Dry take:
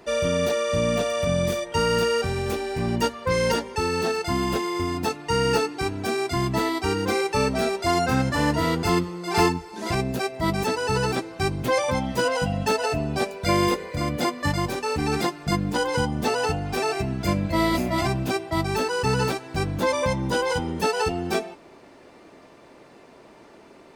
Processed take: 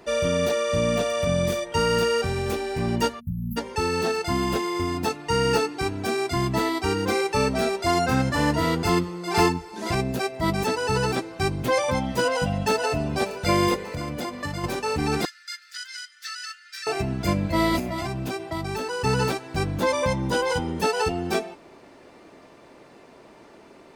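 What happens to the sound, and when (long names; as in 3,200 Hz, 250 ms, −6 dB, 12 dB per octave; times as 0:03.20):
0:03.20–0:03.57: time-frequency box erased 260–11,000 Hz
0:11.85–0:12.95: delay throw 590 ms, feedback 75%, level −17 dB
0:13.87–0:14.64: downward compressor, threshold −26 dBFS
0:15.25–0:16.87: Chebyshev high-pass with heavy ripple 1,300 Hz, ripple 9 dB
0:17.79–0:19.04: downward compressor, threshold −25 dBFS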